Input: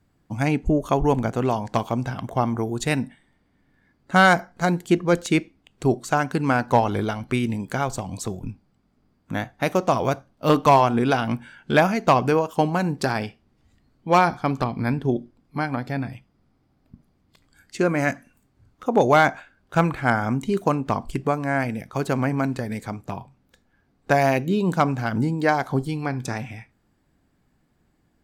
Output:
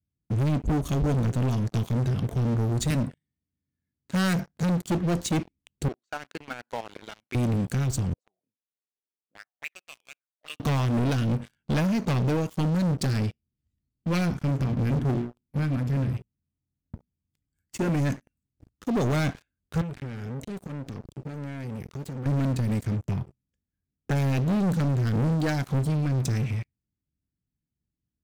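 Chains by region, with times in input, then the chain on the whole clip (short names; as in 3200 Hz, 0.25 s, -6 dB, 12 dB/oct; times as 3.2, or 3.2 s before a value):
2.9–4.63 HPF 57 Hz 24 dB/oct + notches 50/100/150/200 Hz
5.88–7.35 BPF 700–3500 Hz + level quantiser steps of 11 dB
8.13–10.6 weighting filter A + auto-wah 410–2600 Hz, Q 5.9, up, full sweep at -22 dBFS
14.32–17.89 bell 4000 Hz -13 dB 0.37 oct + notches 60/120/180/240/300/360/420/480/540 Hz
19.81–22.26 compressor 3:1, threshold -34 dBFS + core saturation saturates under 1400 Hz
22.83–24.15 Butterworth band-stop 4000 Hz, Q 3.2 + high shelf 11000 Hz -7 dB
whole clip: HPF 65 Hz 12 dB/oct; passive tone stack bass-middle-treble 10-0-1; sample leveller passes 5; gain +5 dB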